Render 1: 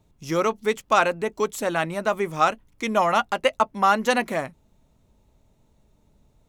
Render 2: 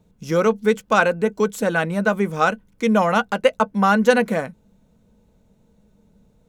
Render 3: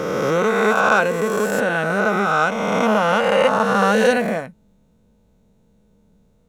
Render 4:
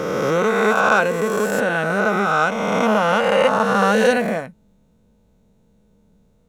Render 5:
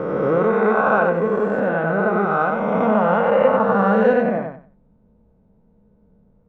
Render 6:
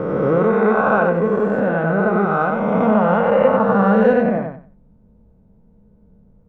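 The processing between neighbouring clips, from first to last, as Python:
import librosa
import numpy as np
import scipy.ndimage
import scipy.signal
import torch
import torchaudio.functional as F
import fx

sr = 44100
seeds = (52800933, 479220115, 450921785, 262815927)

y1 = fx.small_body(x, sr, hz=(200.0, 470.0, 1500.0), ring_ms=65, db=13)
y2 = fx.spec_swells(y1, sr, rise_s=2.49)
y2 = F.gain(torch.from_numpy(y2), -4.0).numpy()
y3 = y2
y4 = scipy.signal.sosfilt(scipy.signal.butter(2, 1200.0, 'lowpass', fs=sr, output='sos'), y3)
y4 = fx.echo_feedback(y4, sr, ms=93, feedback_pct=21, wet_db=-5.0)
y5 = fx.low_shelf(y4, sr, hz=230.0, db=7.0)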